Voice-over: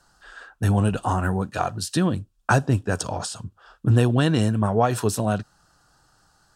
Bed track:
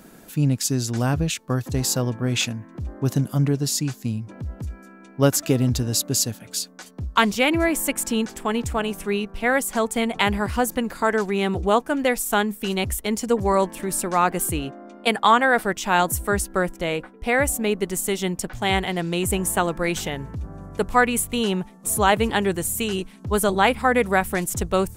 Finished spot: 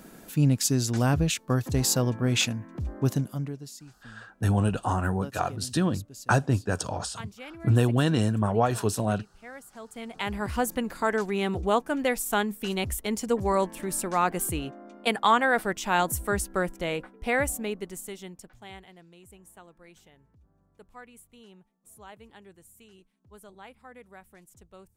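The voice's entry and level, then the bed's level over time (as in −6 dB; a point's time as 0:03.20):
3.80 s, −3.5 dB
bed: 0:03.04 −1.5 dB
0:03.84 −23.5 dB
0:09.72 −23.5 dB
0:10.50 −5 dB
0:17.36 −5 dB
0:19.16 −29.5 dB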